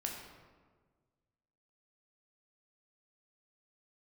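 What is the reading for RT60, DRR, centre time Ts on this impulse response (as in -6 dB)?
1.5 s, -0.5 dB, 55 ms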